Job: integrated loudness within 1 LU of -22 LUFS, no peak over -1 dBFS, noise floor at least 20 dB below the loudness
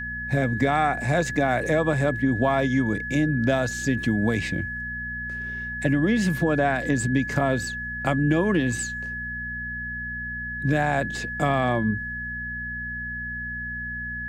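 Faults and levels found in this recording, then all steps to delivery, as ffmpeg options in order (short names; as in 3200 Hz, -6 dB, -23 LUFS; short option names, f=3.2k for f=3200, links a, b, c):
hum 60 Hz; harmonics up to 240 Hz; hum level -35 dBFS; steady tone 1700 Hz; tone level -30 dBFS; loudness -25.0 LUFS; peak -9.0 dBFS; loudness target -22.0 LUFS
-> -af "bandreject=f=60:t=h:w=4,bandreject=f=120:t=h:w=4,bandreject=f=180:t=h:w=4,bandreject=f=240:t=h:w=4"
-af "bandreject=f=1.7k:w=30"
-af "volume=3dB"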